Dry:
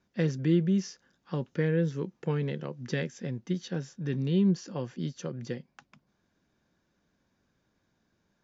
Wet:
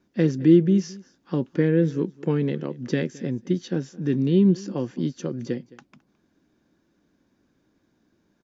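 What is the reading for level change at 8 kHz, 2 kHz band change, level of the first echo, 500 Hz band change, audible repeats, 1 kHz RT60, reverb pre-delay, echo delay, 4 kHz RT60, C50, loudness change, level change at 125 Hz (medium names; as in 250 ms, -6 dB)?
no reading, +2.5 dB, -21.5 dB, +8.0 dB, 1, no reverb, no reverb, 215 ms, no reverb, no reverb, +7.5 dB, +5.0 dB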